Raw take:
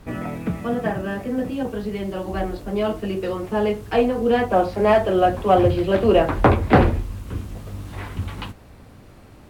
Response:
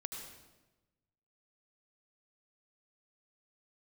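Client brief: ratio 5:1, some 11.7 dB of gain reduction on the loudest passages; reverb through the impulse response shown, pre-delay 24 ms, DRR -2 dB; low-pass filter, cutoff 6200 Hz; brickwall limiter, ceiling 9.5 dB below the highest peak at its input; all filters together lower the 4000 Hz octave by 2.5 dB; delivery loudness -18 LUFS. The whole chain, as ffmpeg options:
-filter_complex "[0:a]lowpass=6.2k,equalizer=f=4k:t=o:g=-3.5,acompressor=threshold=-23dB:ratio=5,alimiter=limit=-20dB:level=0:latency=1,asplit=2[a][b];[1:a]atrim=start_sample=2205,adelay=24[c];[b][c]afir=irnorm=-1:irlink=0,volume=3.5dB[d];[a][d]amix=inputs=2:normalize=0,volume=7.5dB"

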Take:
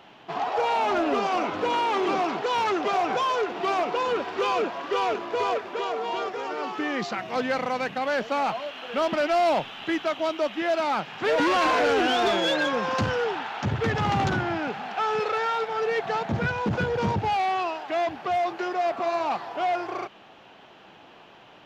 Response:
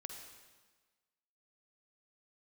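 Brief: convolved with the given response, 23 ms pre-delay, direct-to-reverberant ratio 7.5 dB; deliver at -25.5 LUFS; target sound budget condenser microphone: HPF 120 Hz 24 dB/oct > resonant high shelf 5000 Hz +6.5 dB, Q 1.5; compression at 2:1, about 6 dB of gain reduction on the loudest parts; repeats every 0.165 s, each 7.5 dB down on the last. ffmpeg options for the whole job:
-filter_complex "[0:a]acompressor=threshold=-31dB:ratio=2,aecho=1:1:165|330|495|660|825:0.422|0.177|0.0744|0.0312|0.0131,asplit=2[a][b];[1:a]atrim=start_sample=2205,adelay=23[c];[b][c]afir=irnorm=-1:irlink=0,volume=-4dB[d];[a][d]amix=inputs=2:normalize=0,highpass=f=120:w=0.5412,highpass=f=120:w=1.3066,highshelf=f=5k:t=q:w=1.5:g=6.5,volume=4dB"

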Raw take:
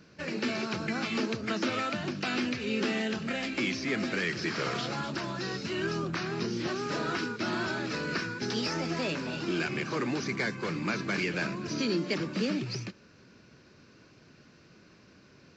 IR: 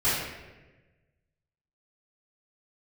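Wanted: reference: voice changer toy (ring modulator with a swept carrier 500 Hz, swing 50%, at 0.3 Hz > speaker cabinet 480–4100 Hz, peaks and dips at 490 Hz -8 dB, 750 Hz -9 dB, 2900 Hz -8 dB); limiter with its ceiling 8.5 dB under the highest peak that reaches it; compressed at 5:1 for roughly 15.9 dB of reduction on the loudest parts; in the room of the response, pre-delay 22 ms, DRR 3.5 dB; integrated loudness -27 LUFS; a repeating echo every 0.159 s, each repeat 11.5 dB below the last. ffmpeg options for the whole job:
-filter_complex "[0:a]acompressor=threshold=-45dB:ratio=5,alimiter=level_in=15.5dB:limit=-24dB:level=0:latency=1,volume=-15.5dB,aecho=1:1:159|318|477:0.266|0.0718|0.0194,asplit=2[a][b];[1:a]atrim=start_sample=2205,adelay=22[c];[b][c]afir=irnorm=-1:irlink=0,volume=-17dB[d];[a][d]amix=inputs=2:normalize=0,aeval=exprs='val(0)*sin(2*PI*500*n/s+500*0.5/0.3*sin(2*PI*0.3*n/s))':c=same,highpass=480,equalizer=f=490:t=q:w=4:g=-8,equalizer=f=750:t=q:w=4:g=-9,equalizer=f=2.9k:t=q:w=4:g=-8,lowpass=f=4.1k:w=0.5412,lowpass=f=4.1k:w=1.3066,volume=27.5dB"

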